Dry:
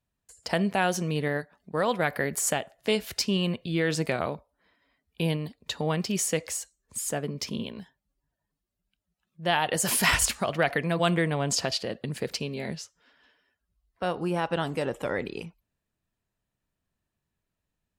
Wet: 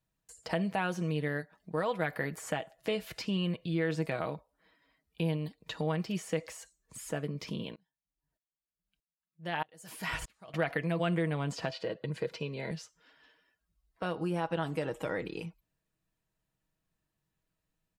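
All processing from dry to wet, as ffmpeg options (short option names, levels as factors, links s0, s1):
-filter_complex "[0:a]asettb=1/sr,asplit=3[s0][s1][s2];[s0]atrim=end=7.754[s3];[s1]atrim=start=7.75:end=10.54,asetpts=PTS-STARTPTS,afade=t=in:d=0.004:c=qsin,afade=t=out:st=2.786:d=0.004:c=qsin,deesser=0.2,aeval=exprs='val(0)*pow(10,-34*if(lt(mod(-1.6*n/s,1),2*abs(-1.6)/1000),1-mod(-1.6*n/s,1)/(2*abs(-1.6)/1000),(mod(-1.6*n/s,1)-2*abs(-1.6)/1000)/(1-2*abs(-1.6)/1000))/20)':c=same[s4];[s2]atrim=start=10.536[s5];[s3][s4]acrossfade=d=0.004:c1=hsin:c2=qsin[s6];[s6][s5]acrossfade=d=0.004:c1=qsin:c2=hsin,asettb=1/sr,asplit=3[s7][s8][s9];[s7]atrim=end=11.694[s10];[s8]atrim=start=11.69:end=12.71,asetpts=PTS-STARTPTS,afade=t=in:d=0.004:c=qsin,afade=t=out:st=1.016:d=0.004:c=qsin,highpass=120,aemphasis=mode=reproduction:type=50fm,aecho=1:1:2:0.39,atrim=end_sample=44982[s11];[s9]atrim=start=12.706[s12];[s10][s11]acrossfade=d=0.004:c1=hsin:c2=qsin[s13];[s13][s12]acrossfade=d=0.004:c1=qsin:c2=hsin,acrossover=split=3100[s14][s15];[s15]acompressor=threshold=0.00631:ratio=4:attack=1:release=60[s16];[s14][s16]amix=inputs=2:normalize=0,aecho=1:1:6.3:0.49,acompressor=threshold=0.0158:ratio=1.5,volume=0.841"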